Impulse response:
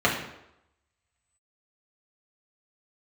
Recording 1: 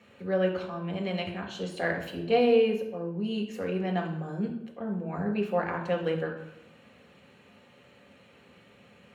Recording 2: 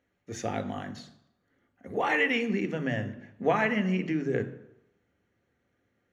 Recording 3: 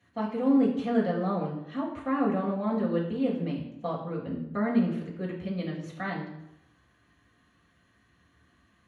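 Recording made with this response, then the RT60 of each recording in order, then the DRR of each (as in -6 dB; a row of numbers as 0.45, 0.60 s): 3; 0.85, 0.85, 0.85 s; 0.5, 8.0, -4.5 dB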